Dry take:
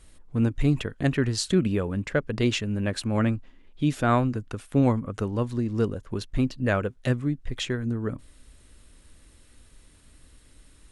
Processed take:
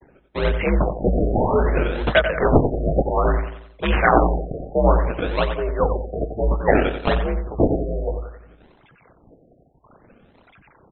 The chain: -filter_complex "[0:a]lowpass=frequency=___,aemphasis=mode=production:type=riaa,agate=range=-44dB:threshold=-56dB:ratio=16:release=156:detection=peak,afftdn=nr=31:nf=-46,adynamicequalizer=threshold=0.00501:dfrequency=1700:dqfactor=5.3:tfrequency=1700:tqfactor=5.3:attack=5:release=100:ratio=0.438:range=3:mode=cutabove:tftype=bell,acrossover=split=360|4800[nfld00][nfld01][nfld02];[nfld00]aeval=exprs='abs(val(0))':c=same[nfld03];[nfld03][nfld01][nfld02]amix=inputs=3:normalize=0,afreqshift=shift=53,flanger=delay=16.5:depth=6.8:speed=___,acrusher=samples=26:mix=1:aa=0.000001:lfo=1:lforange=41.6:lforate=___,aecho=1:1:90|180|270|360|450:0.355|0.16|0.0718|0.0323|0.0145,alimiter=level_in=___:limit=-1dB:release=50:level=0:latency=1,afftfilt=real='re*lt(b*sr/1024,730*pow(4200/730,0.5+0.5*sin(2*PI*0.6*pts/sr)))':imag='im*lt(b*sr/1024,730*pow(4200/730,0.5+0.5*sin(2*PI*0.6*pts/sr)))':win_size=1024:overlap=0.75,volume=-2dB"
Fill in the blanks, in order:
8700, 0.95, 1.2, 16.5dB